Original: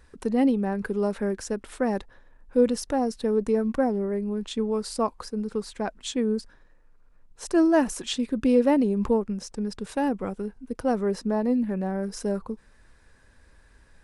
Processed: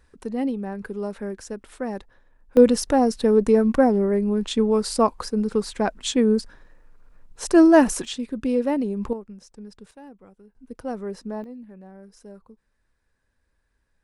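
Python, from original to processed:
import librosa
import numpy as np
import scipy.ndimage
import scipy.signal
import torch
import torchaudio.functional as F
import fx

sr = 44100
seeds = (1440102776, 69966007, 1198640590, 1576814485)

y = fx.gain(x, sr, db=fx.steps((0.0, -4.0), (2.57, 6.5), (8.05, -2.5), (9.13, -11.0), (9.91, -19.0), (10.55, -6.0), (11.44, -16.0)))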